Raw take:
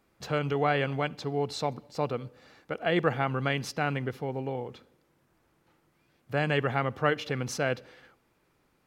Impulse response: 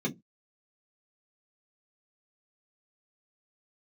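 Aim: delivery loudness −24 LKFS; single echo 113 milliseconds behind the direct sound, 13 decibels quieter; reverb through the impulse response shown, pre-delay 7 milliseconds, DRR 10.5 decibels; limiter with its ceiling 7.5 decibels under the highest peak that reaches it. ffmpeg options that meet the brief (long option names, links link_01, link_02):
-filter_complex "[0:a]alimiter=limit=-17dB:level=0:latency=1,aecho=1:1:113:0.224,asplit=2[link_01][link_02];[1:a]atrim=start_sample=2205,adelay=7[link_03];[link_02][link_03]afir=irnorm=-1:irlink=0,volume=-16dB[link_04];[link_01][link_04]amix=inputs=2:normalize=0,volume=6.5dB"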